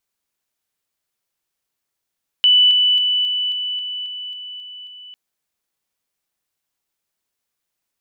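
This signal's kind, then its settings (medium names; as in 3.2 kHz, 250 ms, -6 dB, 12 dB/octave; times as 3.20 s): level ladder 2.98 kHz -9 dBFS, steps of -3 dB, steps 10, 0.27 s 0.00 s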